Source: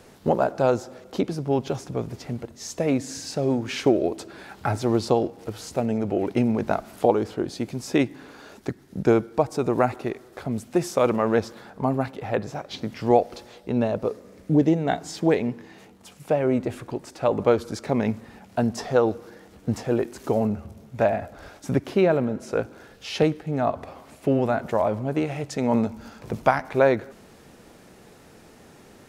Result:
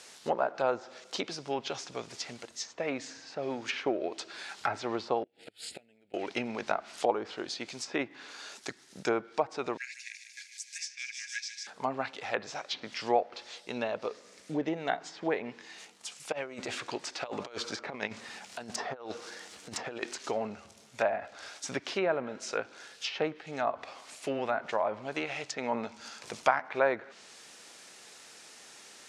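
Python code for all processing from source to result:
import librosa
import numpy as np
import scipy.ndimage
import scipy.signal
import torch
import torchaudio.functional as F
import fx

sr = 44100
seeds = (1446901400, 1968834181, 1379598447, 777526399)

y = fx.chain(x, sr, fx.gate_flip(shuts_db=-18.0, range_db=-26),
    fx.fixed_phaser(hz=2600.0, stages=4), at=(5.23, 6.14))
y = fx.chain(y, sr, fx.cheby_ripple_highpass(hz=1600.0, ripple_db=9),
    fx.echo_wet_highpass(ms=150, feedback_pct=62, hz=3000.0, wet_db=-4.0), at=(9.77, 11.67))
y = fx.chain(y, sr, fx.over_compress(threshold_db=-26.0, ratio=-0.5),
    fx.resample_bad(factor=2, down='filtered', up='zero_stuff'), at=(16.32, 20.16))
y = fx.weighting(y, sr, curve='ITU-R 468')
y = fx.env_lowpass_down(y, sr, base_hz=1500.0, full_db=-22.5)
y = y * librosa.db_to_amplitude(-3.5)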